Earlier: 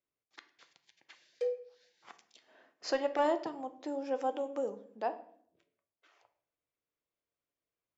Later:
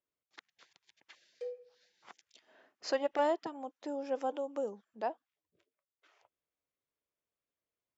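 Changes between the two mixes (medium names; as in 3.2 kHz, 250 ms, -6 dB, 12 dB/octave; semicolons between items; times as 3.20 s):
speech: send off; background -8.0 dB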